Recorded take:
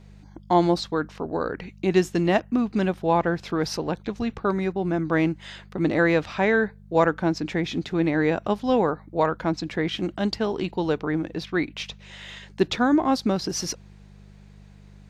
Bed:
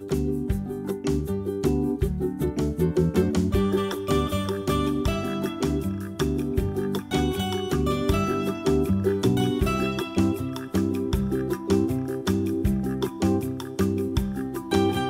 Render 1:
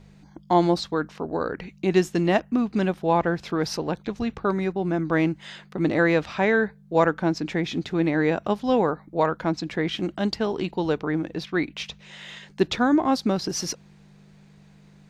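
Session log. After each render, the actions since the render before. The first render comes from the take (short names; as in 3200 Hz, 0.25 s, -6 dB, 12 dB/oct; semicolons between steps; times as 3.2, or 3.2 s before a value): de-hum 50 Hz, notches 2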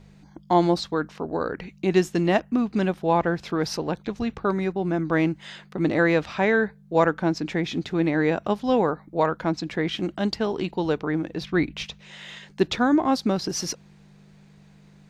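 11.41–11.86 low shelf 160 Hz +11.5 dB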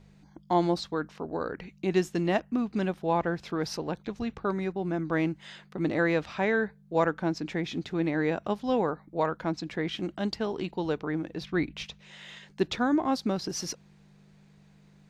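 gain -5.5 dB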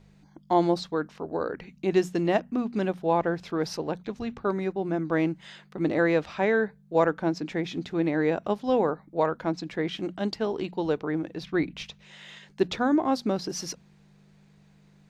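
notches 60/120/180/240 Hz; dynamic EQ 490 Hz, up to +4 dB, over -35 dBFS, Q 0.81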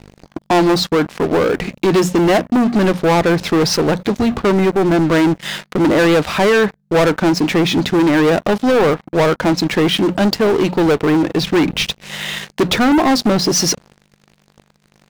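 in parallel at -2.5 dB: compressor 6:1, threshold -35 dBFS, peak gain reduction 17.5 dB; on the sum: sample leveller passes 5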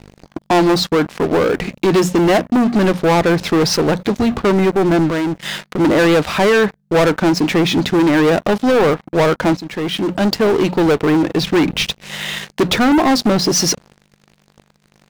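5.09–5.79 compressor 5:1, threshold -17 dBFS; 9.57–10.37 fade in, from -14.5 dB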